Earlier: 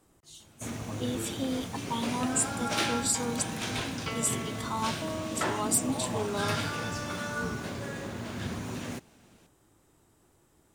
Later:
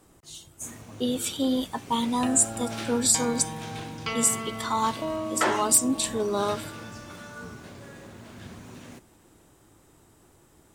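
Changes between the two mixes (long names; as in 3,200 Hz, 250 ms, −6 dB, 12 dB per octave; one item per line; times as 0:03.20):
speech +7.0 dB
first sound −8.0 dB
second sound +6.0 dB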